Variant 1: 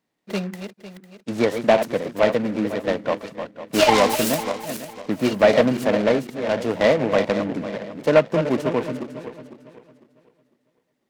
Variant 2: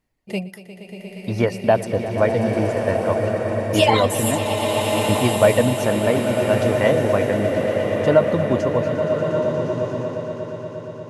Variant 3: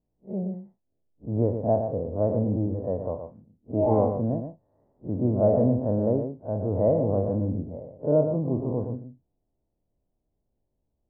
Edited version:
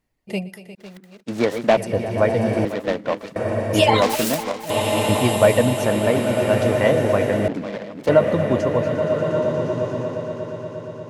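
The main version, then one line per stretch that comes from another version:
2
0.75–1.77 from 1
2.65–3.36 from 1
4.02–4.7 from 1
7.48–8.09 from 1
not used: 3

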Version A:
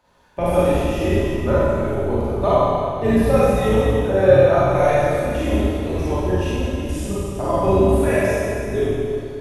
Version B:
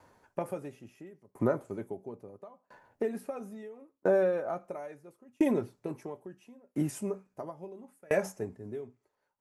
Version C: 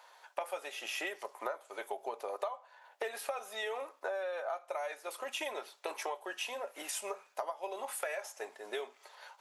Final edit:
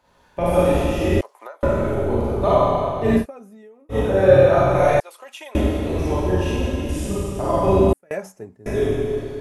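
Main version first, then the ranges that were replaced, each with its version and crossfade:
A
1.21–1.63 from C
3.21–3.94 from B, crossfade 0.10 s
5–5.55 from C
7.93–8.66 from B

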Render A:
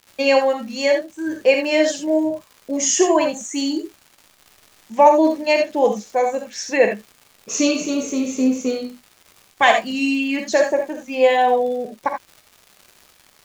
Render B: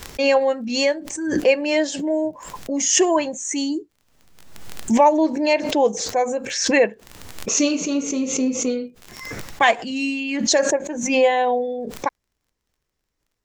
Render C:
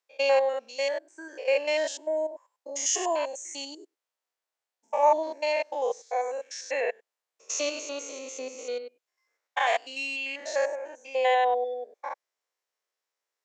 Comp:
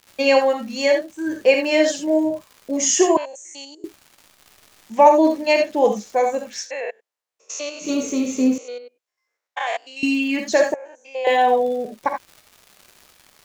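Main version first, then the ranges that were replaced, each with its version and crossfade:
A
3.17–3.84 from C
6.64–7.85 from C, crossfade 0.10 s
8.58–10.03 from C
10.74–11.27 from C
not used: B

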